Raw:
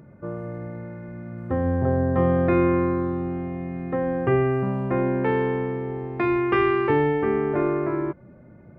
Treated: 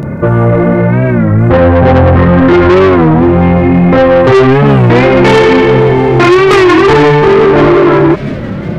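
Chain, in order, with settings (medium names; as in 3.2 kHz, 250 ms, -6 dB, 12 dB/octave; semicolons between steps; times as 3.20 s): 4.68–6.13 s: resonant high shelf 1.9 kHz +6.5 dB, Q 1.5; in parallel at +2 dB: compression, threshold -29 dBFS, peak gain reduction 13 dB; on the sum: chorus voices 2, 0.72 Hz, delay 29 ms, depth 4.1 ms; 2.16–2.70 s: static phaser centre 2.6 kHz, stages 6; saturation -26.5 dBFS, distortion -8 dB; feedback echo behind a high-pass 175 ms, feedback 84%, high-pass 2.1 kHz, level -18.5 dB; loudness maximiser +28.5 dB; warped record 33 1/3 rpm, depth 160 cents; trim -1 dB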